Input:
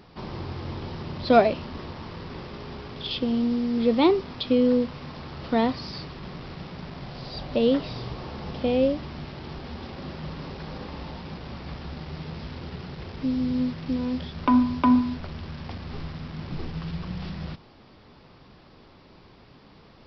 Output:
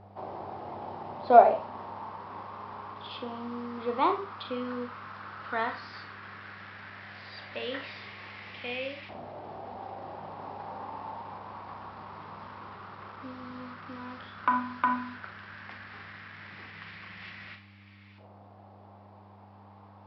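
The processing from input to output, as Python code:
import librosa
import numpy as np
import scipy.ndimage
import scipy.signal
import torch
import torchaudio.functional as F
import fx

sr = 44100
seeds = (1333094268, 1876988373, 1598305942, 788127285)

y = fx.filter_lfo_bandpass(x, sr, shape='saw_up', hz=0.11, low_hz=690.0, high_hz=2300.0, q=3.3)
y = fx.dmg_buzz(y, sr, base_hz=100.0, harmonics=3, level_db=-61.0, tilt_db=-9, odd_only=False)
y = fx.rev_schroeder(y, sr, rt60_s=0.31, comb_ms=29, drr_db=6.0)
y = F.gain(torch.from_numpy(y), 6.5).numpy()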